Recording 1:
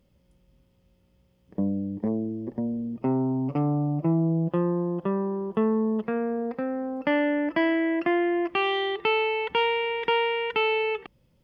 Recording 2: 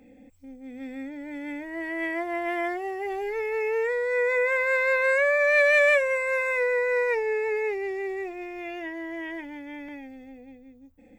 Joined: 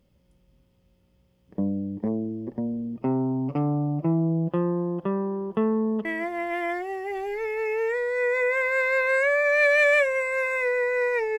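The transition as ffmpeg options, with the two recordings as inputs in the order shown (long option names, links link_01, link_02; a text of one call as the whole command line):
ffmpeg -i cue0.wav -i cue1.wav -filter_complex "[0:a]apad=whole_dur=11.38,atrim=end=11.38,atrim=end=6.052[link_01];[1:a]atrim=start=1.998:end=7.33[link_02];[link_01][link_02]acrossfade=duration=0.004:curve1=hsin:curve2=hsin,asplit=2[link_03][link_04];[link_04]afade=type=in:start_time=5.78:duration=0.01,afade=type=out:start_time=6.05:duration=0.01,aecho=0:1:230|460:0.16788|0.0251821[link_05];[link_03][link_05]amix=inputs=2:normalize=0" out.wav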